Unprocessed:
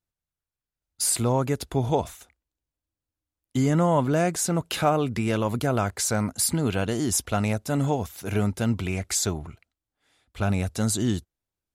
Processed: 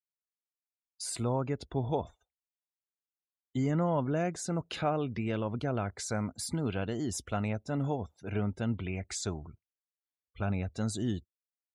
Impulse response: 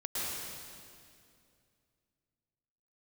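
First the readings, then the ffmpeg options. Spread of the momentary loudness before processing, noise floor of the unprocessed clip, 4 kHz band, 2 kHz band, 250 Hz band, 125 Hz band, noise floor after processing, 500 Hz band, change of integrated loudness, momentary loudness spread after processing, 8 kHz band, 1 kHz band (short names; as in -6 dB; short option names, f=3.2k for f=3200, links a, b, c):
7 LU, under -85 dBFS, -10.5 dB, -9.0 dB, -7.5 dB, -7.5 dB, under -85 dBFS, -8.0 dB, -8.5 dB, 7 LU, -14.0 dB, -9.0 dB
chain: -af "equalizer=f=14k:t=o:w=0.96:g=-15,afftdn=nr=32:nf=-44,adynamicequalizer=threshold=0.01:dfrequency=1100:dqfactor=1.4:tfrequency=1100:tqfactor=1.4:attack=5:release=100:ratio=0.375:range=2:mode=cutabove:tftype=bell,volume=-7.5dB"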